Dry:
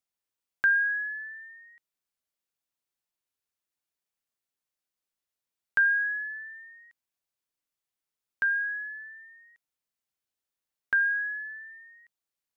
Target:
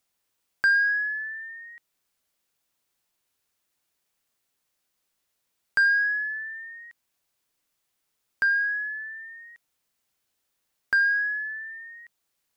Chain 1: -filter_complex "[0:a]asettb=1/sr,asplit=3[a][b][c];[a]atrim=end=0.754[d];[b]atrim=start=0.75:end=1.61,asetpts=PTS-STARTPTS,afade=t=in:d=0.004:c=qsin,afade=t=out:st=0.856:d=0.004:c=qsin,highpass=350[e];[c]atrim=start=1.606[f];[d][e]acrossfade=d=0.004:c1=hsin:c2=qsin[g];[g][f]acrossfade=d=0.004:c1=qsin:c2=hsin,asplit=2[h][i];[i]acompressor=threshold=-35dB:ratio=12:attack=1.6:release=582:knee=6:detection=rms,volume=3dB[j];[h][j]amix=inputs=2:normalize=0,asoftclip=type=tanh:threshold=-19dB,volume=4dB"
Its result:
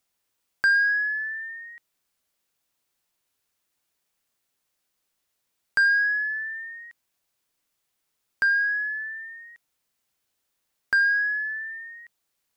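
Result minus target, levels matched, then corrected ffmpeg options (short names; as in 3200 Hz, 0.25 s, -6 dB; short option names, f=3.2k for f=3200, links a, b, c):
compressor: peak gain reduction -9.5 dB
-filter_complex "[0:a]asettb=1/sr,asplit=3[a][b][c];[a]atrim=end=0.754[d];[b]atrim=start=0.75:end=1.61,asetpts=PTS-STARTPTS,afade=t=in:d=0.004:c=qsin,afade=t=out:st=0.856:d=0.004:c=qsin,highpass=350[e];[c]atrim=start=1.606[f];[d][e]acrossfade=d=0.004:c1=hsin:c2=qsin[g];[g][f]acrossfade=d=0.004:c1=qsin:c2=hsin,asplit=2[h][i];[i]acompressor=threshold=-45.5dB:ratio=12:attack=1.6:release=582:knee=6:detection=rms,volume=3dB[j];[h][j]amix=inputs=2:normalize=0,asoftclip=type=tanh:threshold=-19dB,volume=4dB"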